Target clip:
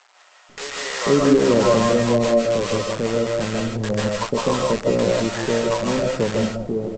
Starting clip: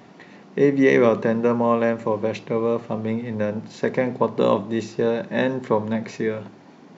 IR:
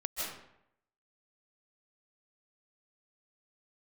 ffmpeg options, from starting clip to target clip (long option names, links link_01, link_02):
-filter_complex "[0:a]lowpass=frequency=1500:width=0.5412,lowpass=frequency=1500:width=1.3066,equalizer=frequency=84:width_type=o:width=1.4:gain=3.5,aresample=16000,acrusher=bits=5:dc=4:mix=0:aa=0.000001,aresample=44100,acrossover=split=720[link_01][link_02];[link_01]adelay=490[link_03];[link_03][link_02]amix=inputs=2:normalize=0[link_04];[1:a]atrim=start_sample=2205,afade=type=out:start_time=0.22:duration=0.01,atrim=end_sample=10143[link_05];[link_04][link_05]afir=irnorm=-1:irlink=0,volume=2dB"